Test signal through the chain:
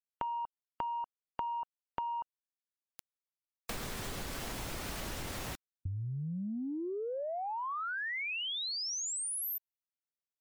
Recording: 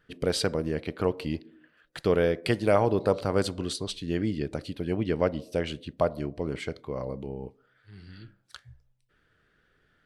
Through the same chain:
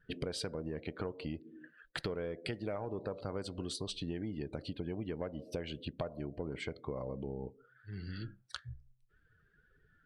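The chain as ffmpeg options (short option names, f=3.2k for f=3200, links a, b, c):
-filter_complex "[0:a]asplit=2[a][b];[b]asoftclip=type=tanh:threshold=-24.5dB,volume=-3dB[c];[a][c]amix=inputs=2:normalize=0,acompressor=threshold=-36dB:ratio=10,afftdn=nr=18:nf=-55"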